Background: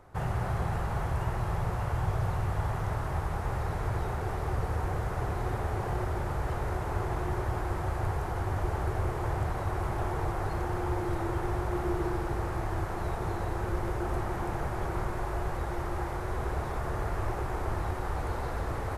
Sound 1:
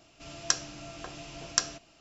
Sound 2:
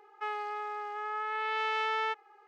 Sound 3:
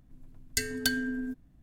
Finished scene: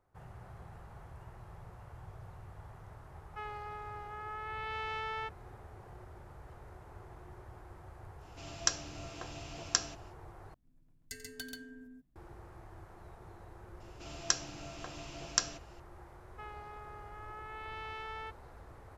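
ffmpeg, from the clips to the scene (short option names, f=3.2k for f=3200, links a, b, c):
-filter_complex "[2:a]asplit=2[a][b];[1:a]asplit=2[c][d];[0:a]volume=-20dB[e];[3:a]aecho=1:1:88|135:0.224|0.668[f];[e]asplit=2[g][h];[g]atrim=end=10.544[i];[f]atrim=end=1.62,asetpts=PTS-STARTPTS,volume=-16.5dB[j];[h]atrim=start=12.156[k];[a]atrim=end=2.47,asetpts=PTS-STARTPTS,volume=-7.5dB,afade=t=in:d=0.004:c=hsin,afade=t=out:st=2.466:d=0.004:c=hsin,adelay=3150[l];[c]atrim=end=2,asetpts=PTS-STARTPTS,volume=-3.5dB,afade=t=in:d=0.1,afade=t=out:st=1.9:d=0.1,adelay=8170[m];[d]atrim=end=2,asetpts=PTS-STARTPTS,volume=-3.5dB,afade=t=in:d=0.004:c=hsin,afade=t=out:st=1.996:d=0.004:c=hsin,adelay=608580S[n];[b]atrim=end=2.47,asetpts=PTS-STARTPTS,volume=-12.5dB,afade=t=in:d=0.004:c=hsin,afade=t=out:st=2.466:d=0.004:c=hsin,adelay=16170[o];[i][j]acrossfade=d=0.004:c1=hsin:c2=hsin[p];[p][k]acrossfade=d=0.004:c1=hsin:c2=hsin[q];[q][l][m][n][o]amix=inputs=5:normalize=0"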